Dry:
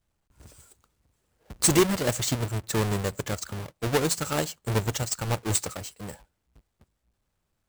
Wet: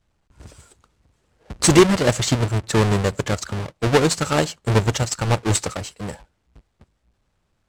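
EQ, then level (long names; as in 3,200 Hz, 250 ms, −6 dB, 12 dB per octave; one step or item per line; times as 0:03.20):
high-frequency loss of the air 56 metres
+8.5 dB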